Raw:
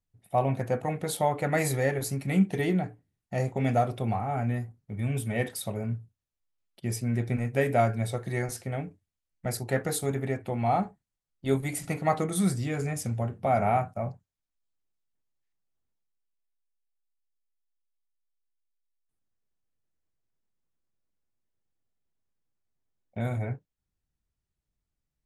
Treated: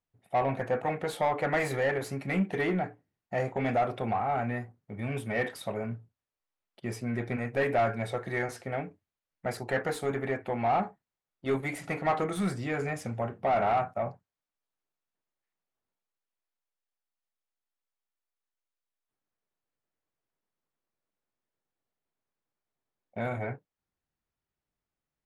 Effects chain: overdrive pedal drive 20 dB, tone 1.1 kHz, clips at -10.5 dBFS; dynamic bell 1.9 kHz, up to +4 dB, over -39 dBFS, Q 0.83; trim -6.5 dB

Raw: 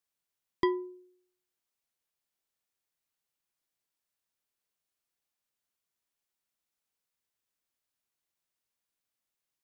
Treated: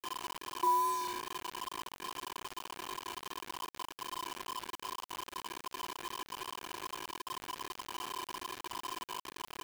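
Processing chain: spectral levelling over time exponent 0.2; high-pass 96 Hz 12 dB/octave; three-band isolator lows -13 dB, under 160 Hz, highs -18 dB, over 2 kHz; on a send: early reflections 37 ms -4.5 dB, 55 ms -14.5 dB; on the sum: dynamic bell 2 kHz, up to +6 dB, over -59 dBFS, Q 1.2; comb 5.8 ms, depth 35%; vibrato 2.5 Hz 24 cents; cascade formant filter a; bit crusher 8-bit; trim +8 dB

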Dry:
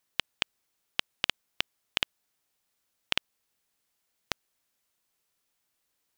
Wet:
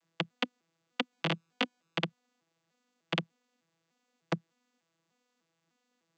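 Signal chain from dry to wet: vocoder on a broken chord bare fifth, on E3, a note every 300 ms; 1.11–1.98 s: doubling 19 ms -2.5 dB

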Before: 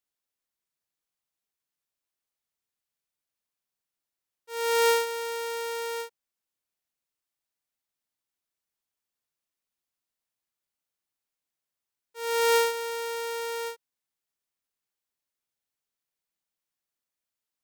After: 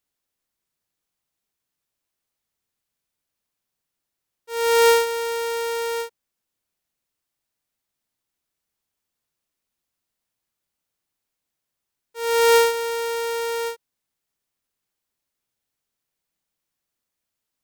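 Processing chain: bass shelf 350 Hz +5.5 dB; trim +5.5 dB

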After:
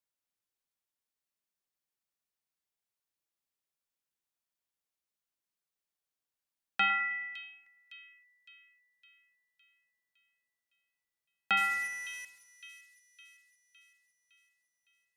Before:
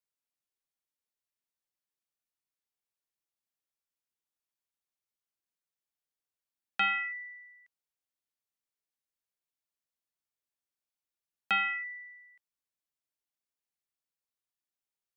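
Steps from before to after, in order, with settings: 11.57–12.25 s: one-bit delta coder 64 kbps, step -37.5 dBFS; two-band feedback delay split 2.5 kHz, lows 105 ms, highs 560 ms, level -12.5 dB

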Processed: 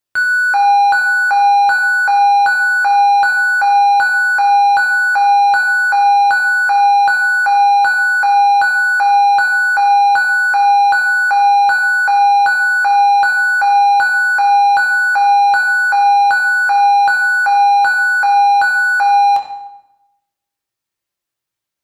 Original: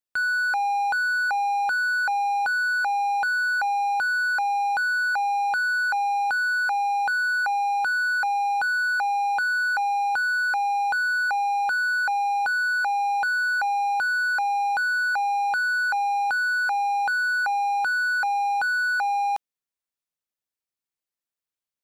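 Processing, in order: reverberation RT60 0.95 s, pre-delay 4 ms, DRR 0 dB; trim +8 dB

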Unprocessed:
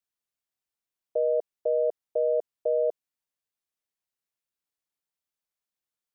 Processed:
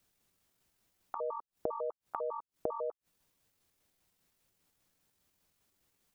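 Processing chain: pitch shift switched off and on +11 st, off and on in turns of 100 ms; bass shelf 390 Hz +11.5 dB; inverted gate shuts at -38 dBFS, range -29 dB; trim +14 dB

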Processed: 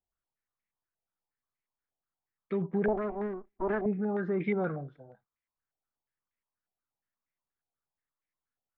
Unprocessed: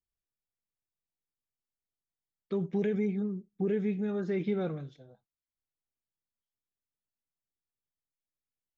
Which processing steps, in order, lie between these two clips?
2.88–3.86 s: comb filter that takes the minimum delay 3 ms; step-sequenced low-pass 8.4 Hz 750–2100 Hz

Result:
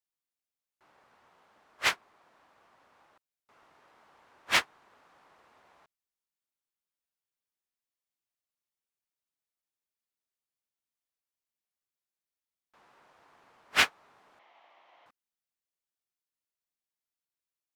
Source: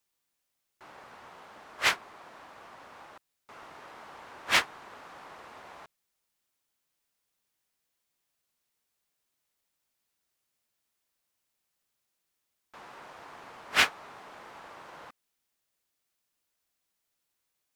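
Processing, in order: 14.39–15.06 s: cabinet simulation 420–5300 Hz, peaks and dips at 450 Hz -7 dB, 710 Hz +7 dB, 1.5 kHz -8 dB, 2.1 kHz +6 dB, 3.1 kHz +6 dB, 4.8 kHz -5 dB; upward expansion 1.5:1, over -47 dBFS

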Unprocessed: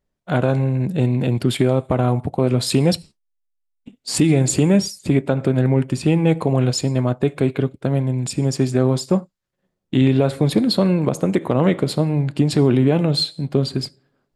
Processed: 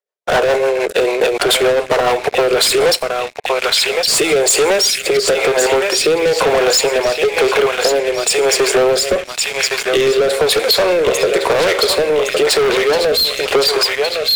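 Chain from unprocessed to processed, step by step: elliptic high-pass 420 Hz, stop band 40 dB; band-passed feedback delay 1112 ms, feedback 67%, band-pass 2.6 kHz, level -5 dB; waveshaping leveller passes 5; rotary cabinet horn 7 Hz, later 1 Hz, at 2.18 s; compression 3:1, threshold -19 dBFS, peak gain reduction 7.5 dB; trim +7 dB

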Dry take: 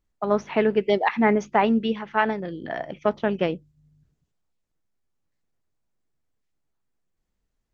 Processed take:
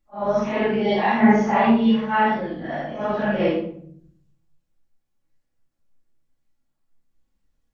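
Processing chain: phase randomisation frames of 200 ms; simulated room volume 960 m³, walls furnished, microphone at 2.3 m

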